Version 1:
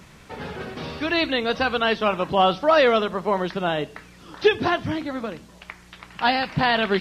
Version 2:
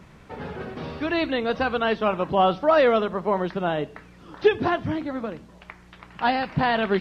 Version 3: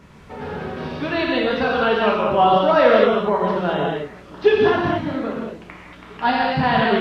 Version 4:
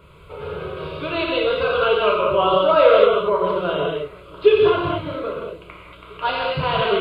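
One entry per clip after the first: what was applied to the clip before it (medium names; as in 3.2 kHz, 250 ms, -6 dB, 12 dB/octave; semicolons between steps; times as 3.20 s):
treble shelf 2.6 kHz -11.5 dB
feedback echo behind a low-pass 824 ms, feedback 68%, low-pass 420 Hz, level -24 dB; gated-style reverb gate 250 ms flat, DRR -3.5 dB
static phaser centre 1.2 kHz, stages 8; trim +2.5 dB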